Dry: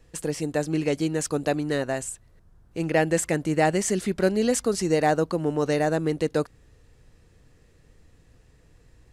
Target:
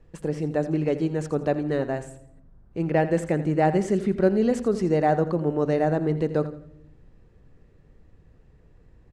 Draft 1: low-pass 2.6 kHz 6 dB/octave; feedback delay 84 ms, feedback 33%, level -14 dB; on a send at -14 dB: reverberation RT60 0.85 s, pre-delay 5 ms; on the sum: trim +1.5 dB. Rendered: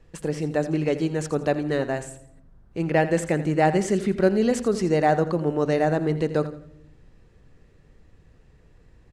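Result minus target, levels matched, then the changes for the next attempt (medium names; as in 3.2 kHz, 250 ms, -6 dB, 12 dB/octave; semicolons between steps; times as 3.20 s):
2 kHz band +4.0 dB
change: low-pass 1 kHz 6 dB/octave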